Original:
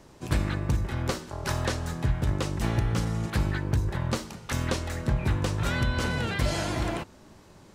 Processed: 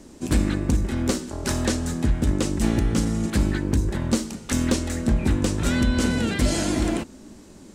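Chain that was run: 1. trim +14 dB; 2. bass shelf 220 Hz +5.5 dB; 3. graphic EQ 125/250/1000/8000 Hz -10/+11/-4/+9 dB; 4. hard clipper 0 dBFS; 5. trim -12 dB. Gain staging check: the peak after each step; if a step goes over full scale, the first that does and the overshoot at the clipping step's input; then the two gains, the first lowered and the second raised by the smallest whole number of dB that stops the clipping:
+1.0 dBFS, +4.0 dBFS, +4.5 dBFS, 0.0 dBFS, -12.0 dBFS; step 1, 4.5 dB; step 1 +9 dB, step 5 -7 dB

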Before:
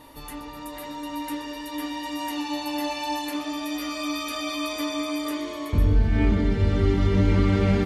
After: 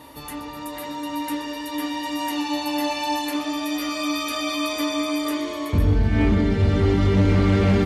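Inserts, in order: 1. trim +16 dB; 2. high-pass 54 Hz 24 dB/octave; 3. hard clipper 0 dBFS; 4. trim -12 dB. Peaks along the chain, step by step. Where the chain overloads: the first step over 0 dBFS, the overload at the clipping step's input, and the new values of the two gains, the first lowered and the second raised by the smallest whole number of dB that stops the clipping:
+7.0 dBFS, +7.0 dBFS, 0.0 dBFS, -12.0 dBFS; step 1, 7.0 dB; step 1 +9 dB, step 4 -5 dB

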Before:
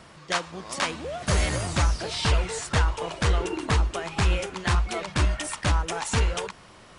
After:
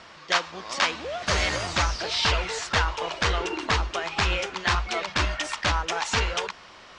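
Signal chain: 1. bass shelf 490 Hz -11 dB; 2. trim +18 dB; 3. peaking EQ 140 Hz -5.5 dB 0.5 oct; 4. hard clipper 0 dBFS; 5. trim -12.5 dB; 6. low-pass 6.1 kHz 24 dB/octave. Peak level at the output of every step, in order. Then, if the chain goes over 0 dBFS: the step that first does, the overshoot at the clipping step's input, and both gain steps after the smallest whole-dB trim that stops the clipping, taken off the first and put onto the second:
-13.0 dBFS, +5.0 dBFS, +5.0 dBFS, 0.0 dBFS, -12.5 dBFS, -11.0 dBFS; step 2, 5.0 dB; step 2 +13 dB, step 5 -7.5 dB

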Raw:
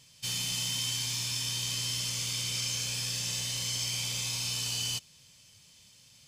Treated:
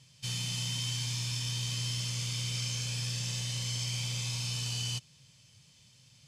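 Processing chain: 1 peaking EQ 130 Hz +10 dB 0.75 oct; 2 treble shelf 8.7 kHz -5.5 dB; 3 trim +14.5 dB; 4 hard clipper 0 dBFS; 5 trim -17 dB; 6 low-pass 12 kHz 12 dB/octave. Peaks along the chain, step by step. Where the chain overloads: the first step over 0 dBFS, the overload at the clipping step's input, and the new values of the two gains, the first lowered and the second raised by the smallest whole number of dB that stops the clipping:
-18.0 dBFS, -19.5 dBFS, -5.0 dBFS, -5.0 dBFS, -22.0 dBFS, -22.0 dBFS; nothing clips

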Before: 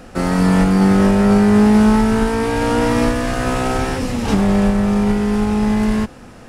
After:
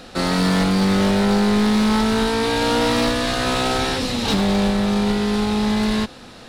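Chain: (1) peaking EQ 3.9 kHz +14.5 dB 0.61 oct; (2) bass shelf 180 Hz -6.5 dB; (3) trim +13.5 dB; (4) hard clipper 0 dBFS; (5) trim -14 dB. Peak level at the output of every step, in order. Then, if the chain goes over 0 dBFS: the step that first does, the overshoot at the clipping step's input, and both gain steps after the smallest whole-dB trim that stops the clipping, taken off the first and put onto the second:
-2.0 dBFS, -4.0 dBFS, +9.5 dBFS, 0.0 dBFS, -14.0 dBFS; step 3, 9.5 dB; step 3 +3.5 dB, step 5 -4 dB

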